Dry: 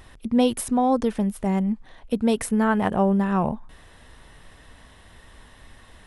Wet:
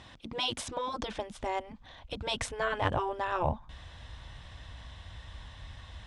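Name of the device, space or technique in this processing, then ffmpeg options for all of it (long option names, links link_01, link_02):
car door speaker: -af "highpass=91,equalizer=frequency=410:width_type=q:width=4:gain=-9,equalizer=frequency=1800:width_type=q:width=4:gain=-3,equalizer=frequency=3500:width_type=q:width=4:gain=5,lowpass=frequency=7000:width=0.5412,lowpass=frequency=7000:width=1.3066,afftfilt=real='re*lt(hypot(re,im),0.316)':imag='im*lt(hypot(re,im),0.316)':win_size=1024:overlap=0.75,bandreject=frequency=1300:width=20,asubboost=boost=11:cutoff=73"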